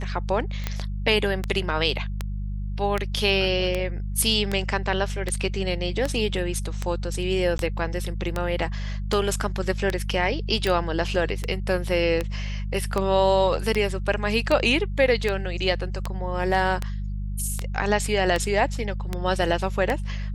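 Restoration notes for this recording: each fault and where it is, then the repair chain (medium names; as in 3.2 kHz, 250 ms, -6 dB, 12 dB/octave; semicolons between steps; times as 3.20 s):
hum 50 Hz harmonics 4 -29 dBFS
tick 78 rpm -11 dBFS
0.64 s: pop -21 dBFS
7.58–7.59 s: dropout 11 ms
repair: de-click; de-hum 50 Hz, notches 4; interpolate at 7.58 s, 11 ms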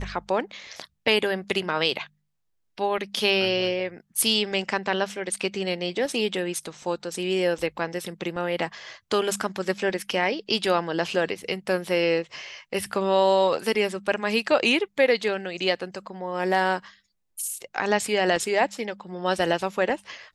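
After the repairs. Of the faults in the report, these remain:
nothing left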